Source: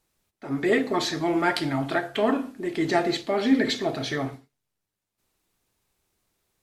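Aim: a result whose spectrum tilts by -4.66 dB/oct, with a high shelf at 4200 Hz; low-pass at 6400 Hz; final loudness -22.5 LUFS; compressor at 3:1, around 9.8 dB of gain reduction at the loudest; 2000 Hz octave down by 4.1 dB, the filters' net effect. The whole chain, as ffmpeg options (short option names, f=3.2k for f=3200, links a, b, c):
-af "lowpass=6.4k,equalizer=f=2k:t=o:g=-6.5,highshelf=f=4.2k:g=8.5,acompressor=threshold=-28dB:ratio=3,volume=8.5dB"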